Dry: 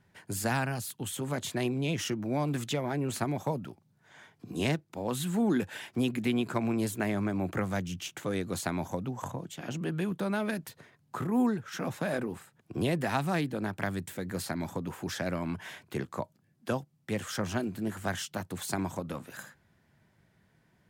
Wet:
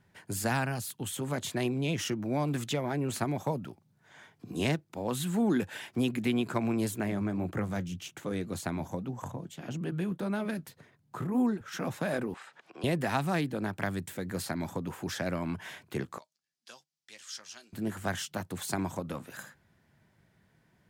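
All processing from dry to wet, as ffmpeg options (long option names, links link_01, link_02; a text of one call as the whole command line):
ffmpeg -i in.wav -filter_complex "[0:a]asettb=1/sr,asplit=3[link_01][link_02][link_03];[link_01]atrim=end=7.004[link_04];[link_02]atrim=start=7:end=11.61,asetpts=PTS-STARTPTS,afade=type=in:duration=0.004:curve=qsin,afade=type=out:start_time=4.606:duration=0.004:curve=qsin,lowshelf=frequency=380:gain=4.5,flanger=delay=0.1:depth=6.4:regen=-68:speed=1.8:shape=sinusoidal[link_05];[link_03]atrim=start=11.606[link_06];[link_04][link_05]acrossfade=duration=0.004:curve1=hsin:curve2=qsin[link_07];[link_07][link_06]acrossfade=duration=0.004:curve1=qsin:curve2=hsin,asettb=1/sr,asplit=3[link_08][link_09][link_10];[link_08]atrim=end=12.344[link_11];[link_09]atrim=start=12.34:end=12.84,asetpts=PTS-STARTPTS,afade=type=in:duration=0.004:curve=qsin,afade=type=out:start_time=0.496:duration=0.004:curve=qsin,acompressor=mode=upward:threshold=-34dB:ratio=2.5:attack=3.2:release=140:knee=2.83:detection=peak,highpass=710,lowpass=4400[link_12];[link_10]atrim=start=12.836[link_13];[link_11][link_12]acrossfade=duration=0.004:curve1=hsin:curve2=qsin[link_14];[link_14][link_13]acrossfade=duration=0.004:curve1=qsin:curve2=hsin,asettb=1/sr,asplit=3[link_15][link_16][link_17];[link_15]atrim=end=16.184[link_18];[link_16]atrim=start=16.18:end=17.73,asetpts=PTS-STARTPTS,afade=type=in:duration=0.004:curve=qsin,afade=type=out:start_time=1.546:duration=0.004:curve=qsin,bandpass=frequency=5200:width_type=q:width=1.7,asplit=2[link_19][link_20];[link_20]adelay=13,volume=-10.5dB[link_21];[link_19][link_21]amix=inputs=2:normalize=0,atrim=end_sample=68355[link_22];[link_17]atrim=start=17.726[link_23];[link_18][link_22]acrossfade=duration=0.004:curve1=hsin:curve2=qsin[link_24];[link_24][link_23]acrossfade=duration=0.004:curve1=qsin:curve2=hsin" out.wav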